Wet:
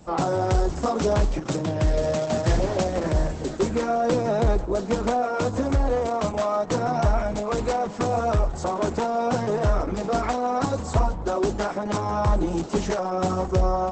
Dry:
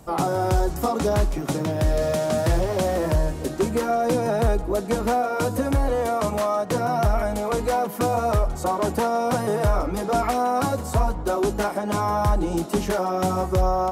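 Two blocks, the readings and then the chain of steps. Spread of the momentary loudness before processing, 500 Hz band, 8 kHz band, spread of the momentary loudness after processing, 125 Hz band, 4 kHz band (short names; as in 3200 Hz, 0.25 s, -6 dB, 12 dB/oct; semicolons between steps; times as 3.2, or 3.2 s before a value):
3 LU, -1.0 dB, -3.0 dB, 3 LU, -0.5 dB, -1.0 dB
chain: Opus 10 kbps 48000 Hz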